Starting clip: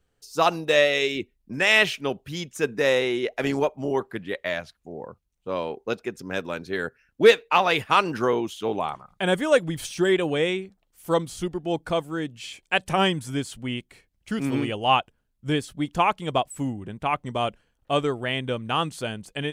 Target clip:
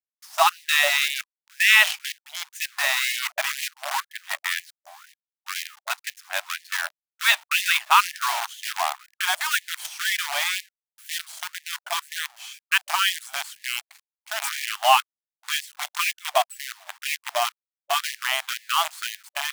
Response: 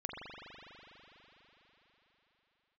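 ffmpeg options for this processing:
-af "acrusher=bits=5:dc=4:mix=0:aa=0.000001,afftfilt=real='re*gte(b*sr/1024,580*pow(1700/580,0.5+0.5*sin(2*PI*2*pts/sr)))':imag='im*gte(b*sr/1024,580*pow(1700/580,0.5+0.5*sin(2*PI*2*pts/sr)))':win_size=1024:overlap=0.75,volume=3.5dB"

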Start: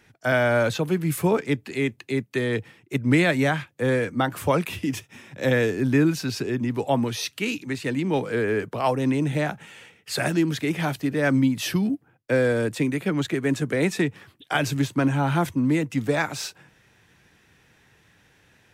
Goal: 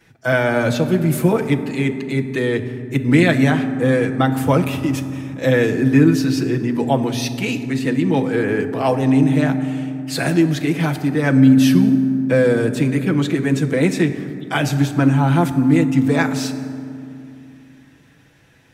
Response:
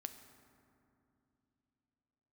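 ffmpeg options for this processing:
-filter_complex "[0:a]asplit=2[a][b];[1:a]atrim=start_sample=2205,lowshelf=f=460:g=3.5,adelay=6[c];[b][c]afir=irnorm=-1:irlink=0,volume=9dB[d];[a][d]amix=inputs=2:normalize=0,volume=-3dB"

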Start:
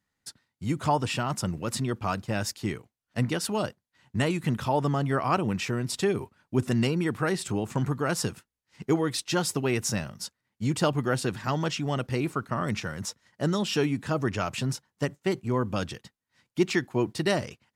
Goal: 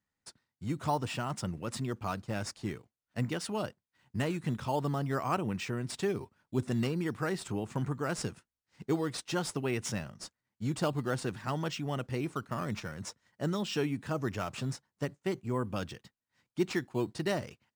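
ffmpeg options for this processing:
-filter_complex "[0:a]aresample=22050,aresample=44100,asplit=2[a][b];[b]acrusher=samples=8:mix=1:aa=0.000001:lfo=1:lforange=8:lforate=0.49,volume=-9.5dB[c];[a][c]amix=inputs=2:normalize=0,volume=-8.5dB"

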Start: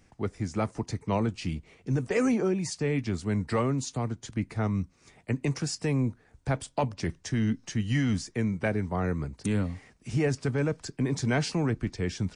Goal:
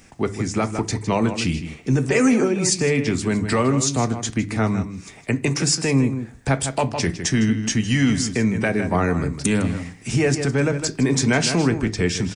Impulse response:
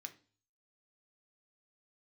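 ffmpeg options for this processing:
-filter_complex "[0:a]asplit=2[a][b];[b]adelay=157.4,volume=-11dB,highshelf=f=4k:g=-3.54[c];[a][c]amix=inputs=2:normalize=0,alimiter=limit=-21.5dB:level=0:latency=1:release=183,asplit=2[d][e];[1:a]atrim=start_sample=2205,highshelf=f=4.6k:g=7[f];[e][f]afir=irnorm=-1:irlink=0,volume=3.5dB[g];[d][g]amix=inputs=2:normalize=0,volume=8.5dB"

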